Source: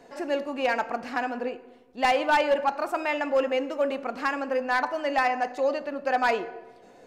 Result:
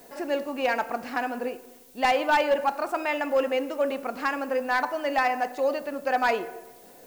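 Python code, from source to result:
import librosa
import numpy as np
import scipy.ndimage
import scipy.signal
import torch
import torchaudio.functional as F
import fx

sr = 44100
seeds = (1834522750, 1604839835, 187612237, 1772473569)

y = fx.dmg_noise_colour(x, sr, seeds[0], colour='blue', level_db=-55.0)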